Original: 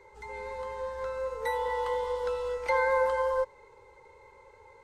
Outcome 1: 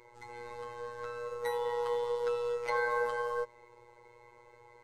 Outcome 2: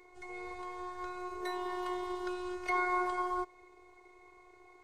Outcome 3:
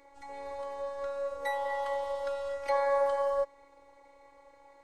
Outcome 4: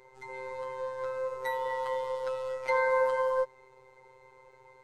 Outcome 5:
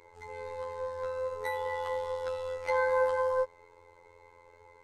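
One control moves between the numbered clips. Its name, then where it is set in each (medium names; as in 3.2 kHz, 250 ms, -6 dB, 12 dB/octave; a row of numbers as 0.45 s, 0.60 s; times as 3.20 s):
robot voice, frequency: 120 Hz, 360 Hz, 280 Hz, 130 Hz, 86 Hz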